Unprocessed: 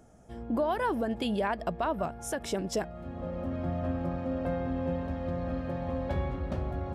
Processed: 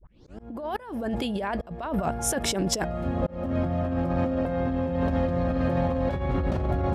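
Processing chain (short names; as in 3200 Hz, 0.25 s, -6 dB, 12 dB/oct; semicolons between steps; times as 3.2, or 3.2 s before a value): tape start at the beginning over 0.39 s; negative-ratio compressor -35 dBFS, ratio -1; auto swell 0.323 s; gain +9 dB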